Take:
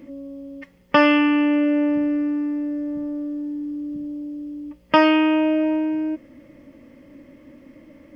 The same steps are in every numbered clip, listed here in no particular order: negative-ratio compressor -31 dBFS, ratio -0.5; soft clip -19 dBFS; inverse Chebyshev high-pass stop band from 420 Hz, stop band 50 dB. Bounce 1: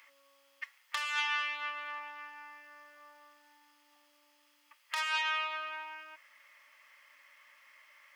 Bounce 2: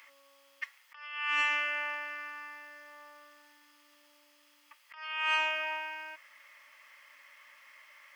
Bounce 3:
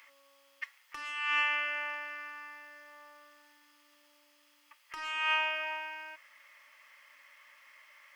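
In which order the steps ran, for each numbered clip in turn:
soft clip > inverse Chebyshev high-pass > negative-ratio compressor; inverse Chebyshev high-pass > negative-ratio compressor > soft clip; inverse Chebyshev high-pass > soft clip > negative-ratio compressor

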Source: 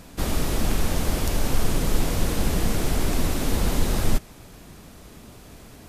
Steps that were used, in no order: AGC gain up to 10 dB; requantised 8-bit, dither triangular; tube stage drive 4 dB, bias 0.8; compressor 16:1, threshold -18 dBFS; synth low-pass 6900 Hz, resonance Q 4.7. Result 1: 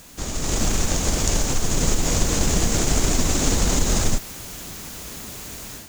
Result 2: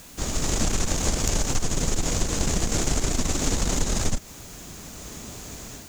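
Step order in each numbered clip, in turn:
compressor > tube stage > synth low-pass > requantised > AGC; AGC > synth low-pass > tube stage > requantised > compressor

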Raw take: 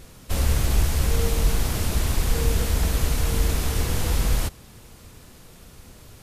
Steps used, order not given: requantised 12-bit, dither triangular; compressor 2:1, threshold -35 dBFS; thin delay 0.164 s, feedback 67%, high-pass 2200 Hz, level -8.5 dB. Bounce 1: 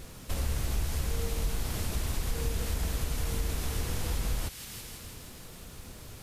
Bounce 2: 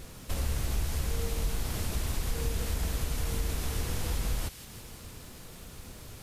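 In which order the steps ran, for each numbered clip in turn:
thin delay > requantised > compressor; requantised > compressor > thin delay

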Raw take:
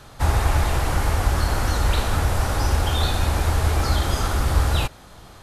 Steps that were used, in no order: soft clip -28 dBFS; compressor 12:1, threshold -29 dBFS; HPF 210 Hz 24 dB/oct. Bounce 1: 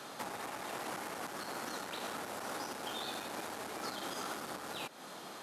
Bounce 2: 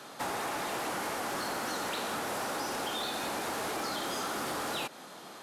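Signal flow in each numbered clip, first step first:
compressor > soft clip > HPF; HPF > compressor > soft clip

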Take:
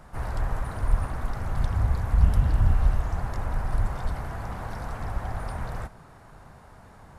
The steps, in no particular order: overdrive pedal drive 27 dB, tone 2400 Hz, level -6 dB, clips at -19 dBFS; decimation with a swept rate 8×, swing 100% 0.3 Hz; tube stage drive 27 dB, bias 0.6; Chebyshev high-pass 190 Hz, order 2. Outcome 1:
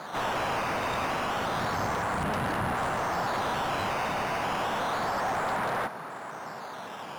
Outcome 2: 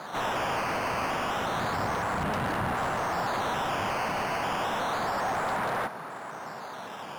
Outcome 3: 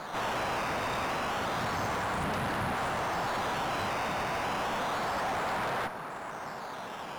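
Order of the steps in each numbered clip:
decimation with a swept rate > Chebyshev high-pass > tube stage > overdrive pedal; Chebyshev high-pass > decimation with a swept rate > tube stage > overdrive pedal; decimation with a swept rate > Chebyshev high-pass > overdrive pedal > tube stage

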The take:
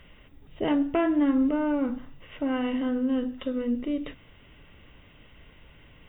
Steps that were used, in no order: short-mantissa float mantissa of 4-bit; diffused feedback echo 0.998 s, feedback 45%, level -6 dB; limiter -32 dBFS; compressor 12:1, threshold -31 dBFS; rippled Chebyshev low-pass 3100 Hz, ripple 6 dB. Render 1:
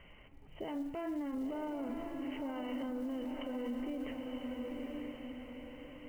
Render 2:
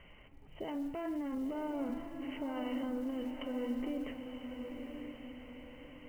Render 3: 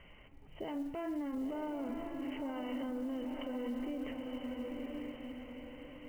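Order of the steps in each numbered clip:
rippled Chebyshev low-pass > short-mantissa float > compressor > diffused feedback echo > limiter; rippled Chebyshev low-pass > limiter > compressor > short-mantissa float > diffused feedback echo; rippled Chebyshev low-pass > compressor > diffused feedback echo > limiter > short-mantissa float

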